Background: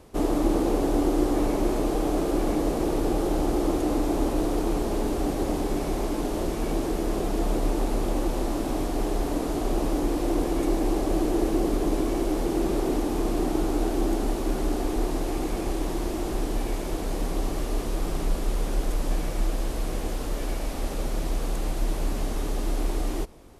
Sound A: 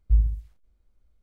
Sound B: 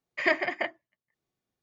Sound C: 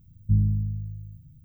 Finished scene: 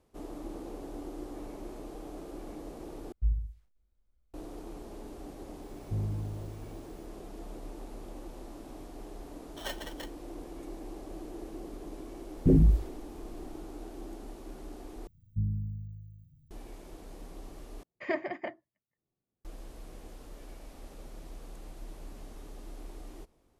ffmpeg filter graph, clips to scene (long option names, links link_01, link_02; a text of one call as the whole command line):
ffmpeg -i bed.wav -i cue0.wav -i cue1.wav -i cue2.wav -filter_complex "[1:a]asplit=2[link_01][link_02];[3:a]asplit=2[link_03][link_04];[2:a]asplit=2[link_05][link_06];[0:a]volume=-18.5dB[link_07];[link_03]asoftclip=type=tanh:threshold=-18.5dB[link_08];[link_05]aeval=exprs='val(0)*sgn(sin(2*PI*1200*n/s))':channel_layout=same[link_09];[link_02]aeval=exprs='0.299*sin(PI/2*5.01*val(0)/0.299)':channel_layout=same[link_10];[link_06]tiltshelf=frequency=970:gain=8[link_11];[link_07]asplit=4[link_12][link_13][link_14][link_15];[link_12]atrim=end=3.124[link_16];[link_01]atrim=end=1.22,asetpts=PTS-STARTPTS,volume=-9dB[link_17];[link_13]atrim=start=4.336:end=15.074[link_18];[link_04]atrim=end=1.44,asetpts=PTS-STARTPTS,volume=-10dB[link_19];[link_14]atrim=start=16.506:end=17.834[link_20];[link_11]atrim=end=1.62,asetpts=PTS-STARTPTS,volume=-8dB[link_21];[link_15]atrim=start=19.446[link_22];[link_08]atrim=end=1.44,asetpts=PTS-STARTPTS,volume=-8.5dB,afade=type=in:duration=0.004:curve=hsin,afade=type=out:start_time=1.436:duration=0.004:curve=hsin,adelay=5620[link_23];[link_09]atrim=end=1.62,asetpts=PTS-STARTPTS,volume=-15dB,afade=type=in:duration=0.004:curve=hsin,afade=type=out:start_time=1.616:duration=0.004:curve=hsin,adelay=9390[link_24];[link_10]atrim=end=1.22,asetpts=PTS-STARTPTS,volume=-5.5dB,afade=type=in:duration=0.004:curve=hsin,afade=type=out:start_time=1.216:duration=0.004:curve=hsin,adelay=545076S[link_25];[link_16][link_17]acrossfade=duration=0.004:curve1=hsin:curve2=hsin[link_26];[link_26][link_18]acrossfade=duration=0.004:curve1=hsin:curve2=hsin[link_27];[link_27][link_19]acrossfade=duration=0.004:curve1=hsin:curve2=hsin[link_28];[link_28][link_20]acrossfade=duration=0.004:curve1=hsin:curve2=hsin[link_29];[link_29][link_21]acrossfade=duration=0.004:curve1=hsin:curve2=hsin[link_30];[link_30][link_22]acrossfade=duration=0.004:curve1=hsin:curve2=hsin[link_31];[link_31][link_23][link_24][link_25]amix=inputs=4:normalize=0" out.wav